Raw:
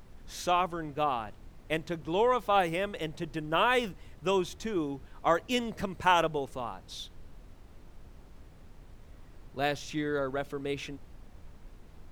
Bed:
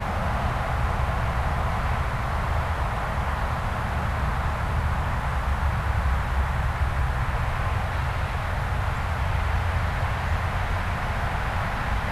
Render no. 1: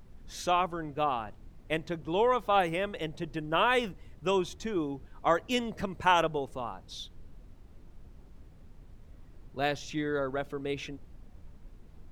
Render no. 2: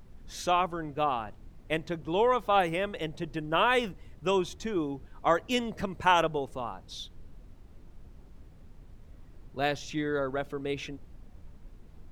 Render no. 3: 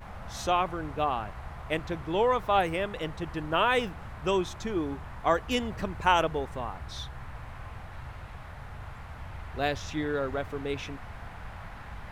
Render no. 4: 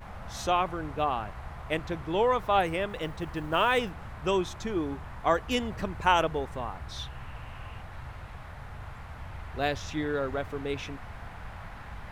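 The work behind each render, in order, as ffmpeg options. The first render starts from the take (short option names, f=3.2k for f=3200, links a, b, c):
-af "afftdn=nr=6:nf=-53"
-af "volume=1dB"
-filter_complex "[1:a]volume=-17dB[a];[0:a][a]amix=inputs=2:normalize=0"
-filter_complex "[0:a]asettb=1/sr,asplit=3[a][b][c];[a]atrim=end=2.894[d];[b]atrim=start=2.89:end=3.79,asetpts=PTS-STARTPTS,afade=t=in:d=0.004:c=qsin,afade=t=out:st=0.896:d=0.004:c=qsin,acrusher=bits=8:mode=log:mix=0:aa=0.000001[e];[c]atrim=start=3.786[f];[d][e]acrossfade=d=0.004:c1=hsin:c2=qsin[g];[g][f]acrossfade=d=0.004:c1=qsin:c2=hsin,asettb=1/sr,asplit=3[h][i][j];[h]atrim=end=6.994[k];[i]atrim=start=6.99:end=7.81,asetpts=PTS-STARTPTS,afade=t=in:d=0.004:c=qsin,afade=t=out:st=0.816:d=0.004:c=qsin,equalizer=f=2.8k:t=o:w=0.25:g=10[l];[j]atrim=start=7.806[m];[k][l]acrossfade=d=0.004:c1=hsin:c2=qsin[n];[n][m]acrossfade=d=0.004:c1=qsin:c2=hsin"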